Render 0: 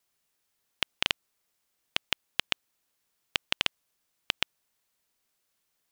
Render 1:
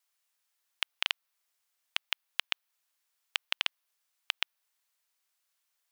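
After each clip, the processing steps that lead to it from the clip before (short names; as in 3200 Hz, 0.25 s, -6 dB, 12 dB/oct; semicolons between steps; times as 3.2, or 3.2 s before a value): HPF 810 Hz 12 dB/oct; dynamic EQ 7500 Hz, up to -6 dB, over -56 dBFS, Q 1.3; gain -2 dB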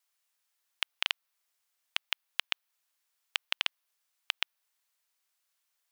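nothing audible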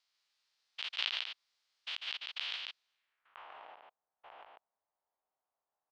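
stepped spectrum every 0.1 s; low-pass sweep 4500 Hz -> 770 Hz, 2.75–3.52; echo 0.145 s -3.5 dB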